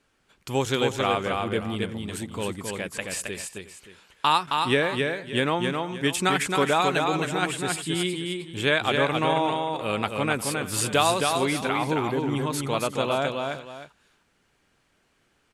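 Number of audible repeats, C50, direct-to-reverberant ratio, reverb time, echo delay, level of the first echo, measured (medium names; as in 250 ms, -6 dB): 3, no reverb, no reverb, no reverb, 268 ms, -4.0 dB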